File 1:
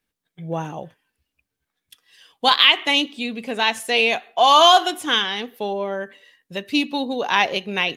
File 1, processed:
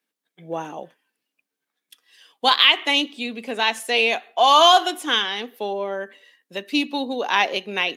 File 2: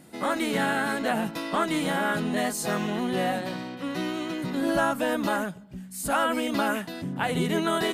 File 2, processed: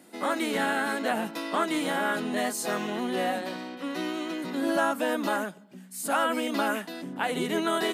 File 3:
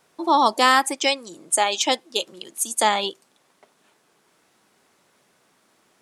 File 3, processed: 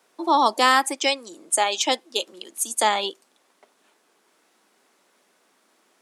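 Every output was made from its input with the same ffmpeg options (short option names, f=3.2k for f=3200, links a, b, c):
-af "highpass=f=220:w=0.5412,highpass=f=220:w=1.3066,volume=-1dB"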